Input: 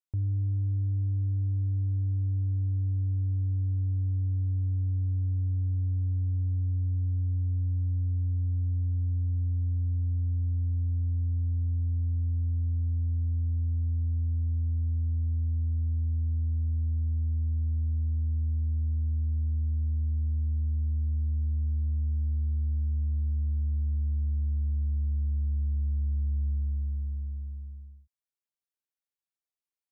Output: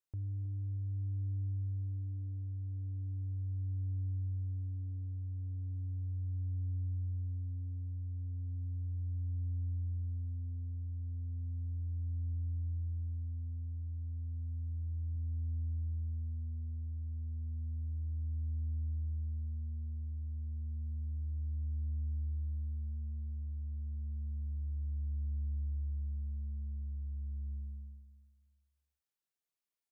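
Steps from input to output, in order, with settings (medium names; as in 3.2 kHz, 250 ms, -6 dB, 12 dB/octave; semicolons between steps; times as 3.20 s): 12.33–15.16 s: bass shelf 87 Hz +5.5 dB; peak limiter -34 dBFS, peak gain reduction 12.5 dB; feedback delay 317 ms, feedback 24%, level -13 dB; trim -1 dB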